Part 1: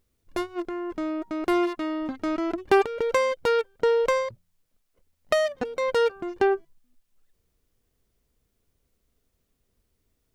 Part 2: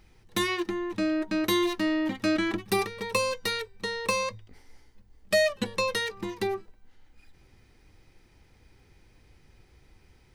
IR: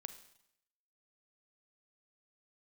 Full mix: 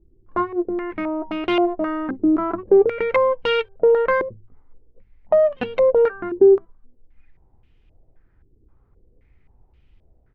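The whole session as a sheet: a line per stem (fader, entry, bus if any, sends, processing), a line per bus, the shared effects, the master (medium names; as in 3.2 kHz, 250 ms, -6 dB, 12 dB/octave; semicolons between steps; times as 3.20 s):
+2.5 dB, 0.00 s, no send, none
-11.5 dB, 7.7 ms, polarity flipped, no send, tilt EQ -3 dB/octave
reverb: none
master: hard clipper -15.5 dBFS, distortion -13 dB; step-sequenced low-pass 3.8 Hz 360–2900 Hz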